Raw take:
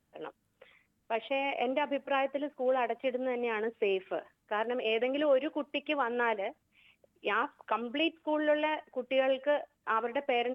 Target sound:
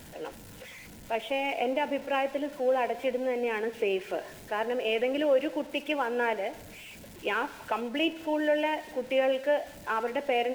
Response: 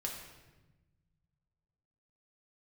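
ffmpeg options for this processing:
-filter_complex "[0:a]aeval=exprs='val(0)+0.5*0.00668*sgn(val(0))':c=same,bandreject=f=1.2k:w=5.2,asplit=2[a][b];[1:a]atrim=start_sample=2205[c];[b][c]afir=irnorm=-1:irlink=0,volume=-11dB[d];[a][d]amix=inputs=2:normalize=0"

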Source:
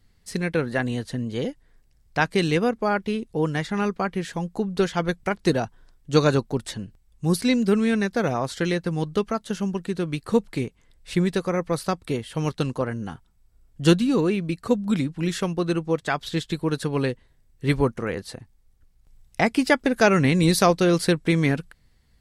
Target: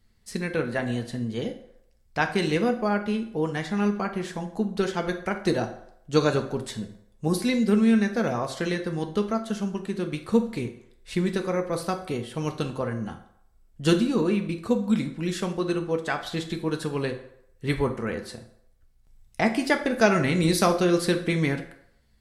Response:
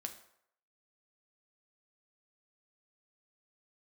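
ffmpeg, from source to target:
-filter_complex "[0:a]asettb=1/sr,asplit=3[a][b][c];[a]atrim=end=6.814[d];[b]atrim=start=6.81:end=7.28,asetpts=PTS-STARTPTS,afade=t=in:d=0.004:c=qsin,afade=t=out:st=0.466:d=0.004:c=qsin,equalizer=f=560:w=0.97:g=10[e];[c]atrim=start=7.276[f];[d][e]acrossfade=d=0.004:c1=hsin:c2=qsin[g];[g][f]acrossfade=d=0.004:c1=qsin:c2=hsin[h];[1:a]atrim=start_sample=2205[i];[h][i]afir=irnorm=-1:irlink=0"

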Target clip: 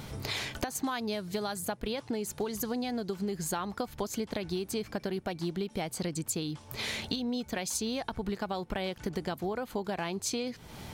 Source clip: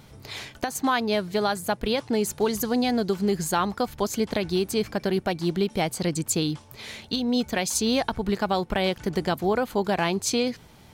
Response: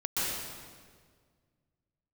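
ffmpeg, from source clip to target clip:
-filter_complex "[0:a]asettb=1/sr,asplit=3[a][b][c];[a]atrim=end=0.834[d];[b]atrim=start=0.83:end=1.65,asetpts=PTS-STARTPTS,afade=t=in:d=0.004:c=qsin,afade=t=out:st=0.816:d=0.004:c=qsin,bass=f=250:g=3,treble=f=4k:g=6[e];[c]atrim=start=1.646[f];[d][e]acrossfade=d=0.004:c1=hsin:c2=qsin[g];[g][f]acrossfade=d=0.004:c1=qsin:c2=hsin,acompressor=threshold=-38dB:ratio=8,volume=7dB"

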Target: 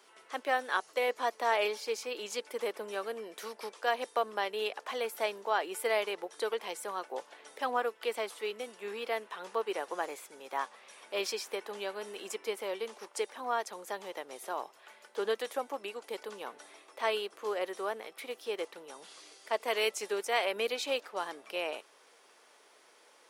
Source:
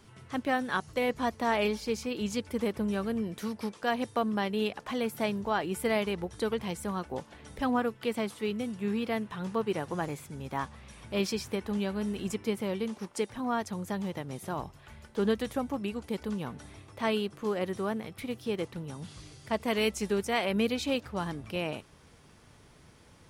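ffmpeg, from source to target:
-af "highpass=f=420:w=0.5412,highpass=f=420:w=1.3066"

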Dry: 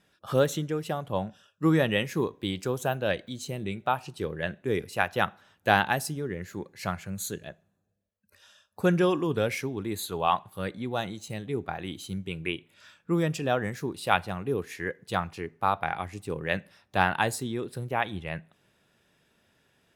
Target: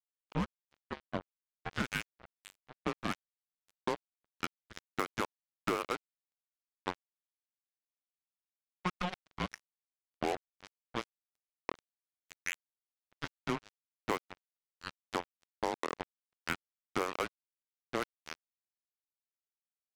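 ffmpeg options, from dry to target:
-af "highpass=f=520:t=q:w=0.5412,highpass=f=520:t=q:w=1.307,lowpass=f=3.2k:t=q:w=0.5176,lowpass=f=3.2k:t=q:w=0.7071,lowpass=f=3.2k:t=q:w=1.932,afreqshift=-360,acrusher=bits=3:mix=0:aa=0.5,acompressor=threshold=-28dB:ratio=6,volume=-1.5dB"

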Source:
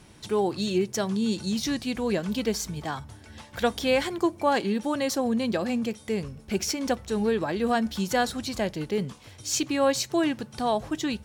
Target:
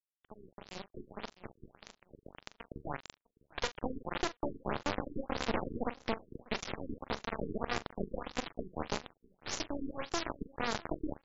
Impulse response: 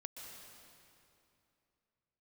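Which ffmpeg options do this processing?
-filter_complex "[0:a]acompressor=threshold=-32dB:ratio=8,asettb=1/sr,asplit=3[a][b][c];[a]atrim=end=1.314[d];[b]atrim=start=1.31:end=2.71,asetpts=PTS-STARTPTS,afade=t=in:d=0.004:c=qsin,afade=t=out:st=1.396:d=0.004:c=qsin,equalizer=f=250:t=o:w=0.93:g=-10.5[e];[c]atrim=start=2.706[f];[d][e]acrossfade=d=0.004:c1=hsin:c2=qsin[g];[g][f]acrossfade=d=0.004:c1=qsin:c2=hsin[h];[1:a]atrim=start_sample=2205,afade=t=out:st=0.31:d=0.01,atrim=end_sample=14112[i];[h][i]afir=irnorm=-1:irlink=0,acrusher=bits=3:dc=4:mix=0:aa=0.000001,asplit=2[j][k];[k]adelay=42,volume=-13.5dB[l];[j][l]amix=inputs=2:normalize=0,aecho=1:1:653|1306:0.0708|0.0156,dynaudnorm=f=380:g=7:m=14dB,afftfilt=real='re*lt(b*sr/1024,440*pow(7600/440,0.5+0.5*sin(2*PI*1.7*pts/sr)))':imag='im*lt(b*sr/1024,440*pow(7600/440,0.5+0.5*sin(2*PI*1.7*pts/sr)))':win_size=1024:overlap=0.75,volume=-6.5dB"

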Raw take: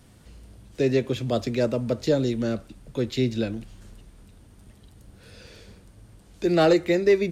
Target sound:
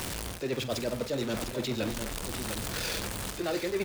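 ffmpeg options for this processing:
-af "aeval=exprs='val(0)+0.5*0.0282*sgn(val(0))':c=same,lowshelf=f=380:g=-10,areverse,acompressor=threshold=-35dB:ratio=8,areverse,atempo=1.9,aecho=1:1:46|702:0.188|0.376,volume=6.5dB"

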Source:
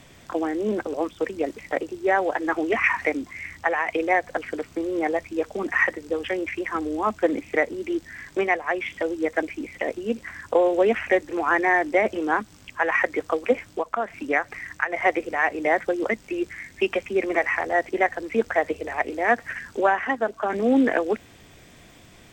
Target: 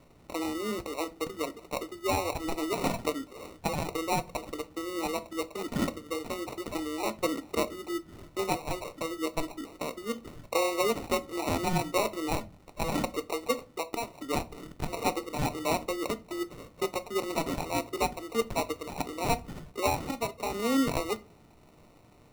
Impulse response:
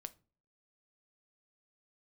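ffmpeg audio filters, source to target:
-filter_complex "[0:a]acrusher=samples=27:mix=1:aa=0.000001[a];[1:a]atrim=start_sample=2205[b];[a][b]afir=irnorm=-1:irlink=0,volume=-3dB"

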